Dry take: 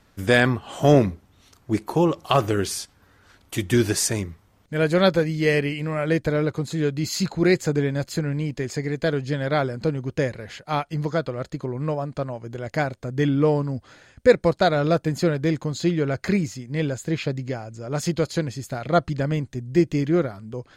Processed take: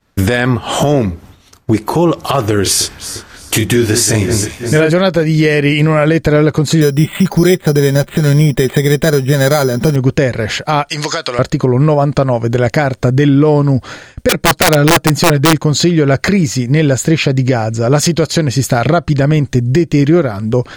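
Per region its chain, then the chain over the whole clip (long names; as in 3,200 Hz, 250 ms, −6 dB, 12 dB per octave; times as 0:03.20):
0:02.63–0:04.92: double-tracking delay 28 ms −3.5 dB + delay that swaps between a low-pass and a high-pass 175 ms, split 2,200 Hz, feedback 64%, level −13 dB
0:06.81–0:09.96: comb filter 5.1 ms, depth 42% + bad sample-rate conversion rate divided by 8×, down filtered, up hold
0:10.89–0:11.39: meter weighting curve ITU-R 468 + downward compressor 10 to 1, threshold −33 dBFS
0:14.29–0:15.58: comb filter 6.4 ms, depth 63% + wrap-around overflow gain 11 dB
whole clip: downward expander −45 dBFS; downward compressor 6 to 1, threshold −27 dBFS; boost into a limiter +22 dB; level −1 dB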